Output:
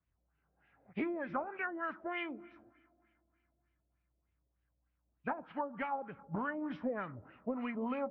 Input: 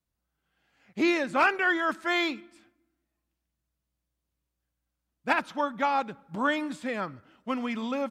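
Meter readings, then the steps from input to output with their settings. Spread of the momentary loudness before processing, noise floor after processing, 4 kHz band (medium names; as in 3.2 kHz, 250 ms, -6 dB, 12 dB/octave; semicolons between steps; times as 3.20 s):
14 LU, -82 dBFS, -20.5 dB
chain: knee-point frequency compression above 2.4 kHz 1.5:1; high-pass 43 Hz; bass shelf 420 Hz -9.5 dB; compression 6:1, threshold -38 dBFS, peak gain reduction 17.5 dB; RIAA curve playback; two-slope reverb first 0.22 s, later 3.3 s, from -20 dB, DRR 15.5 dB; LFO low-pass sine 3.3 Hz 550–2700 Hz; trim -1 dB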